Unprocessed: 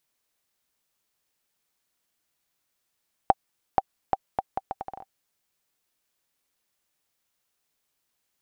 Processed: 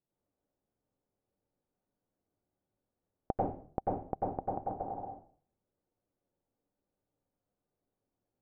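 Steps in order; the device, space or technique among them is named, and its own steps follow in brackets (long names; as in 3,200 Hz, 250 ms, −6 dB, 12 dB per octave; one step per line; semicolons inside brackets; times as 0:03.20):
television next door (downward compressor, threshold −25 dBFS, peak gain reduction 10.5 dB; low-pass filter 480 Hz 12 dB per octave; convolution reverb RT60 0.45 s, pre-delay 87 ms, DRR −4.5 dB)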